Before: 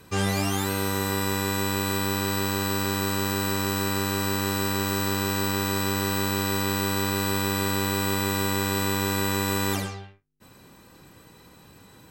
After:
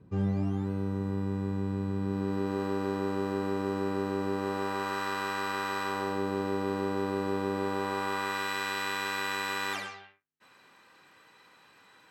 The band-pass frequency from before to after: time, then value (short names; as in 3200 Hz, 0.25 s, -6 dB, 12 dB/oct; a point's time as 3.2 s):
band-pass, Q 0.89
1.96 s 150 Hz
2.61 s 410 Hz
4.29 s 410 Hz
5.02 s 1200 Hz
5.83 s 1200 Hz
6.23 s 450 Hz
7.54 s 450 Hz
8.51 s 1800 Hz